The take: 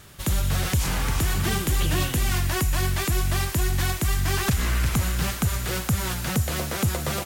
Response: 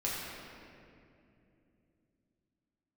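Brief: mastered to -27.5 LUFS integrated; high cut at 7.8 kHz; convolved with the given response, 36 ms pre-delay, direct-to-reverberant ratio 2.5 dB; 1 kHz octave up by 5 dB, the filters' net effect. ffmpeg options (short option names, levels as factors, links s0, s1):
-filter_complex "[0:a]lowpass=7800,equalizer=f=1000:t=o:g=6.5,asplit=2[s0][s1];[1:a]atrim=start_sample=2205,adelay=36[s2];[s1][s2]afir=irnorm=-1:irlink=0,volume=0.376[s3];[s0][s3]amix=inputs=2:normalize=0,volume=0.562"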